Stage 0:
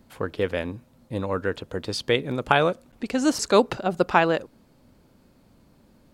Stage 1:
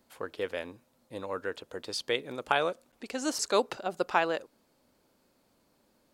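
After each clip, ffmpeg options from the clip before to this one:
ffmpeg -i in.wav -af "bass=frequency=250:gain=-13,treble=frequency=4000:gain=4,volume=-7dB" out.wav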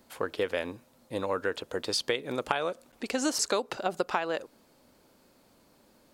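ffmpeg -i in.wav -af "acompressor=threshold=-31dB:ratio=16,volume=7dB" out.wav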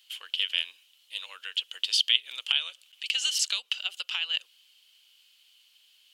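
ffmpeg -i in.wav -af "highpass=frequency=3000:width_type=q:width=12" out.wav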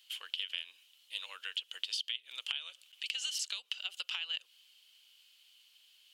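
ffmpeg -i in.wav -af "acompressor=threshold=-31dB:ratio=8,volume=-2.5dB" out.wav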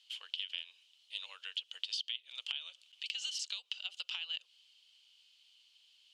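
ffmpeg -i in.wav -af "highpass=760,lowpass=4600,equalizer=frequency=1600:width_type=o:width=2:gain=-12.5,volume=5.5dB" out.wav

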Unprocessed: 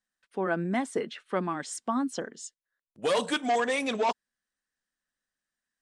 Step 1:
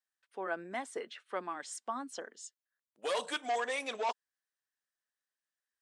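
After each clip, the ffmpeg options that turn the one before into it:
ffmpeg -i in.wav -af "highpass=470,volume=-6dB" out.wav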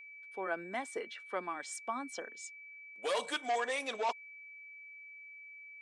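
ffmpeg -i in.wav -af "aeval=exprs='val(0)+0.00355*sin(2*PI*2300*n/s)':channel_layout=same" out.wav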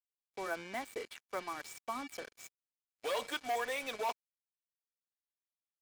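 ffmpeg -i in.wav -filter_complex "[0:a]acrossover=split=490|1700|5300[link_01][link_02][link_03][link_04];[link_04]alimiter=level_in=17.5dB:limit=-24dB:level=0:latency=1:release=198,volume=-17.5dB[link_05];[link_01][link_02][link_03][link_05]amix=inputs=4:normalize=0,acrusher=bits=6:mix=0:aa=0.5,volume=-2dB" out.wav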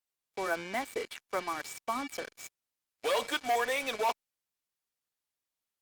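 ffmpeg -i in.wav -af "volume=6dB" -ar 48000 -c:a libopus -b:a 96k out.opus

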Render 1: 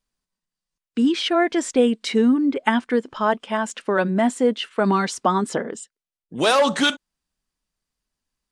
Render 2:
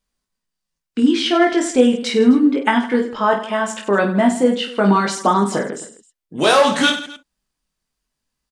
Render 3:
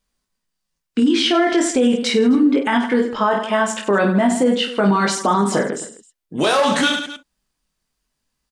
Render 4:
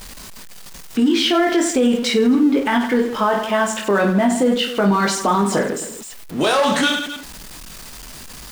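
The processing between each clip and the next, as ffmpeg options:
ffmpeg -i in.wav -af "aecho=1:1:20|50|95|162.5|263.8:0.631|0.398|0.251|0.158|0.1,volume=2dB" out.wav
ffmpeg -i in.wav -af "alimiter=limit=-11dB:level=0:latency=1:release=40,volume=3dB" out.wav
ffmpeg -i in.wav -af "aeval=exprs='val(0)+0.5*0.0355*sgn(val(0))':channel_layout=same,volume=-1dB" out.wav

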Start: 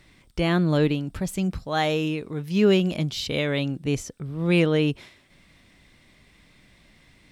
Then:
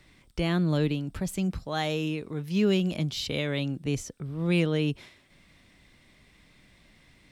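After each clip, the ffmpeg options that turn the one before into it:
ffmpeg -i in.wav -filter_complex "[0:a]acrossover=split=240|3000[link_01][link_02][link_03];[link_02]acompressor=threshold=-32dB:ratio=1.5[link_04];[link_01][link_04][link_03]amix=inputs=3:normalize=0,volume=-2.5dB" out.wav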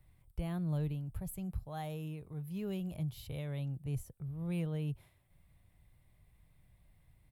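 ffmpeg -i in.wav -af "firequalizer=gain_entry='entry(120,0);entry(230,-18);entry(750,-9);entry(1400,-17);entry(5800,-23);entry(11000,0)':delay=0.05:min_phase=1,volume=-1.5dB" out.wav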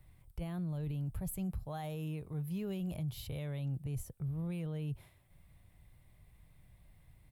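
ffmpeg -i in.wav -af "alimiter=level_in=11.5dB:limit=-24dB:level=0:latency=1:release=27,volume=-11.5dB,volume=4dB" out.wav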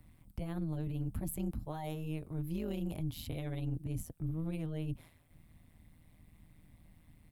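ffmpeg -i in.wav -af "tremolo=f=160:d=0.857,volume=4.5dB" out.wav

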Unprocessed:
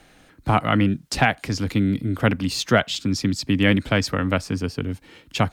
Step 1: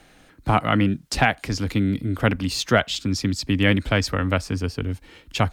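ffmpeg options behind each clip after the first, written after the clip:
ffmpeg -i in.wav -af "asubboost=boost=4.5:cutoff=69" out.wav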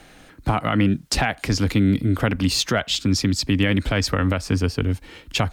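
ffmpeg -i in.wav -af "alimiter=limit=-14.5dB:level=0:latency=1:release=136,volume=5dB" out.wav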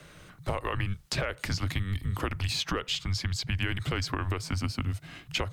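ffmpeg -i in.wav -filter_complex "[0:a]afreqshift=-190,acrossover=split=92|3600[link_01][link_02][link_03];[link_01]acompressor=threshold=-35dB:ratio=4[link_04];[link_02]acompressor=threshold=-25dB:ratio=4[link_05];[link_03]acompressor=threshold=-34dB:ratio=4[link_06];[link_04][link_05][link_06]amix=inputs=3:normalize=0,volume=-3.5dB" out.wav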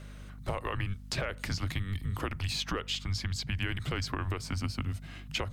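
ffmpeg -i in.wav -af "aeval=exprs='val(0)+0.00794*(sin(2*PI*50*n/s)+sin(2*PI*2*50*n/s)/2+sin(2*PI*3*50*n/s)/3+sin(2*PI*4*50*n/s)/4+sin(2*PI*5*50*n/s)/5)':channel_layout=same,volume=-3dB" out.wav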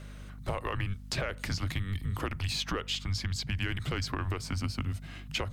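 ffmpeg -i in.wav -af "asoftclip=type=tanh:threshold=-19dB,volume=1dB" out.wav

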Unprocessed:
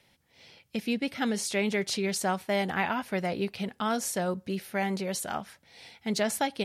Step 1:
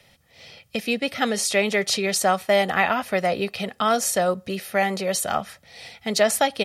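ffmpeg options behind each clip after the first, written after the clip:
ffmpeg -i in.wav -filter_complex "[0:a]acrossover=split=240|1800[link_01][link_02][link_03];[link_01]acompressor=threshold=-45dB:ratio=6[link_04];[link_04][link_02][link_03]amix=inputs=3:normalize=0,aecho=1:1:1.6:0.43,volume=8dB" out.wav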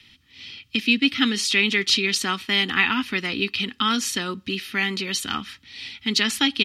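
ffmpeg -i in.wav -af "firequalizer=gain_entry='entry(110,0);entry(160,-7);entry(270,9);entry(620,-29);entry(910,-5);entry(1300,-2);entry(2000,1);entry(2900,9);entry(6400,-3);entry(9300,-9)':delay=0.05:min_phase=1,volume=1dB" out.wav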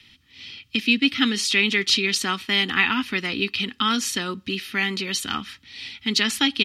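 ffmpeg -i in.wav -af anull out.wav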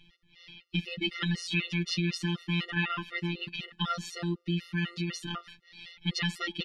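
ffmpeg -i in.wav -af "afftfilt=real='hypot(re,im)*cos(PI*b)':imag='0':win_size=1024:overlap=0.75,aemphasis=mode=reproduction:type=bsi,afftfilt=real='re*gt(sin(2*PI*4*pts/sr)*(1-2*mod(floor(b*sr/1024/370),2)),0)':imag='im*gt(sin(2*PI*4*pts/sr)*(1-2*mod(floor(b*sr/1024/370),2)),0)':win_size=1024:overlap=0.75,volume=-2.5dB" out.wav

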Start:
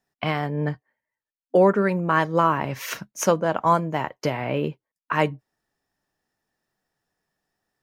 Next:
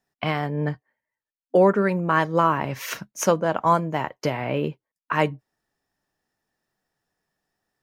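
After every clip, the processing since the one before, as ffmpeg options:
ffmpeg -i in.wav -af anull out.wav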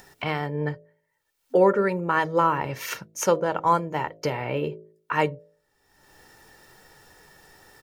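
ffmpeg -i in.wav -af "acompressor=mode=upward:threshold=-29dB:ratio=2.5,aecho=1:1:2.2:0.43,bandreject=frequency=53.7:width_type=h:width=4,bandreject=frequency=107.4:width_type=h:width=4,bandreject=frequency=161.1:width_type=h:width=4,bandreject=frequency=214.8:width_type=h:width=4,bandreject=frequency=268.5:width_type=h:width=4,bandreject=frequency=322.2:width_type=h:width=4,bandreject=frequency=375.9:width_type=h:width=4,bandreject=frequency=429.6:width_type=h:width=4,bandreject=frequency=483.3:width_type=h:width=4,bandreject=frequency=537:width_type=h:width=4,bandreject=frequency=590.7:width_type=h:width=4,bandreject=frequency=644.4:width_type=h:width=4,bandreject=frequency=698.1:width_type=h:width=4,volume=-2dB" out.wav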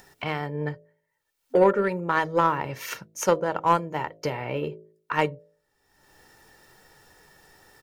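ffmpeg -i in.wav -af "aeval=exprs='0.447*(cos(1*acos(clip(val(0)/0.447,-1,1)))-cos(1*PI/2))+0.0794*(cos(2*acos(clip(val(0)/0.447,-1,1)))-cos(2*PI/2))+0.0158*(cos(3*acos(clip(val(0)/0.447,-1,1)))-cos(3*PI/2))+0.0282*(cos(4*acos(clip(val(0)/0.447,-1,1)))-cos(4*PI/2))+0.00891*(cos(7*acos(clip(val(0)/0.447,-1,1)))-cos(7*PI/2))':channel_layout=same" out.wav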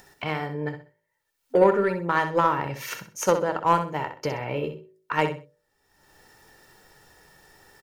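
ffmpeg -i in.wav -af "aecho=1:1:64|128|192:0.355|0.0923|0.024" out.wav

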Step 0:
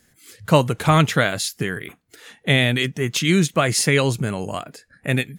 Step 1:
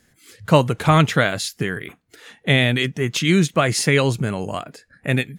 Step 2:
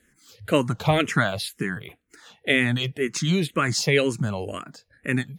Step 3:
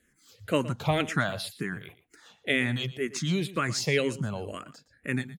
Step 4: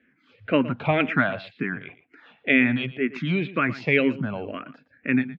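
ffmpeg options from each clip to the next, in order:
ffmpeg -i in.wav -af "highshelf=frequency=7100:gain=-6.5,volume=1dB" out.wav
ffmpeg -i in.wav -filter_complex "[0:a]asplit=2[link_01][link_02];[link_02]afreqshift=-2[link_03];[link_01][link_03]amix=inputs=2:normalize=1,volume=-1dB" out.wav
ffmpeg -i in.wav -af "aecho=1:1:117:0.15,volume=-5.5dB" out.wav
ffmpeg -i in.wav -af "highpass=120,equalizer=frequency=260:width_type=q:width=4:gain=9,equalizer=frequency=660:width_type=q:width=4:gain=3,equalizer=frequency=1500:width_type=q:width=4:gain=4,equalizer=frequency=2400:width_type=q:width=4:gain=8,lowpass=frequency=2900:width=0.5412,lowpass=frequency=2900:width=1.3066,volume=2.5dB" out.wav

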